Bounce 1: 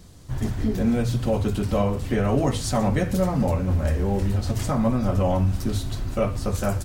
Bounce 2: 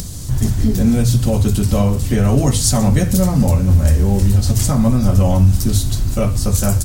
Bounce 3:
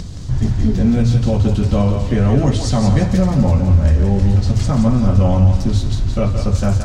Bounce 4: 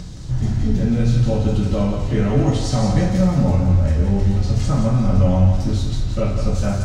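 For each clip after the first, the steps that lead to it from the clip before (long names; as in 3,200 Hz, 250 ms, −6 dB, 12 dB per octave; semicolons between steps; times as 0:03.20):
bass and treble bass +9 dB, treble +15 dB; upward compression, threshold −20 dBFS; level +2 dB
high-frequency loss of the air 150 metres; feedback echo with a high-pass in the loop 171 ms, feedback 42%, level −6 dB
convolution reverb, pre-delay 3 ms, DRR −2 dB; level −6.5 dB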